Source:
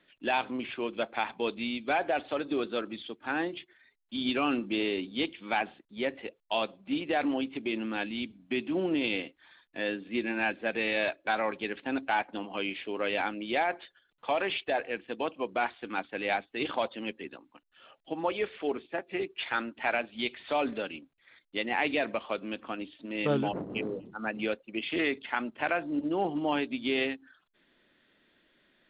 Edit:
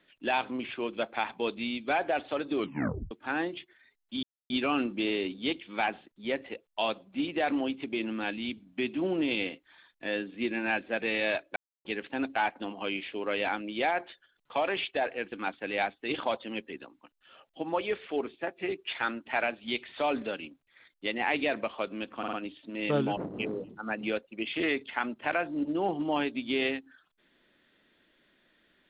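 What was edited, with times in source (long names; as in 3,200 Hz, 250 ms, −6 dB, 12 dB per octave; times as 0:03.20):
0:02.57: tape stop 0.54 s
0:04.23: splice in silence 0.27 s
0:11.29–0:11.58: silence
0:15.05–0:15.83: remove
0:22.69: stutter 0.05 s, 4 plays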